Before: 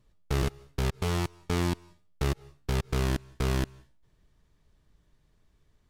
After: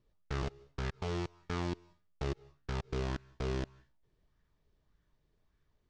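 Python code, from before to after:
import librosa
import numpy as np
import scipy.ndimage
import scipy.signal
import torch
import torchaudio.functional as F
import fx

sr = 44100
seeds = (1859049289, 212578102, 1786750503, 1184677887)

y = scipy.signal.sosfilt(scipy.signal.butter(4, 6400.0, 'lowpass', fs=sr, output='sos'), x)
y = fx.bell_lfo(y, sr, hz=1.7, low_hz=370.0, high_hz=1700.0, db=7)
y = F.gain(torch.from_numpy(y), -9.0).numpy()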